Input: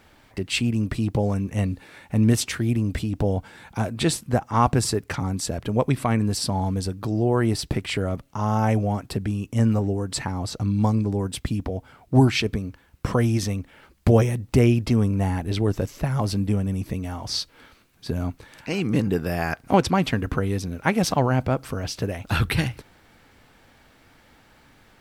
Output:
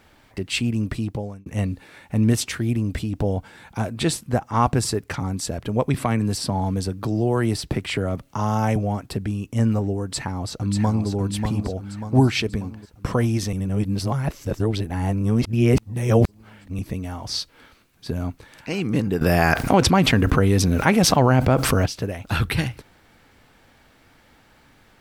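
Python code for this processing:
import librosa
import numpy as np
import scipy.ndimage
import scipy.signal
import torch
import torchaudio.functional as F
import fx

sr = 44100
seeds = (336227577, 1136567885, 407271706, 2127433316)

y = fx.band_squash(x, sr, depth_pct=40, at=(5.94, 8.76))
y = fx.echo_throw(y, sr, start_s=10.03, length_s=1.05, ms=590, feedback_pct=50, wet_db=-5.5)
y = fx.env_flatten(y, sr, amount_pct=70, at=(19.21, 21.86))
y = fx.edit(y, sr, fx.fade_out_span(start_s=0.92, length_s=0.54),
    fx.reverse_span(start_s=13.53, length_s=3.26), tone=tone)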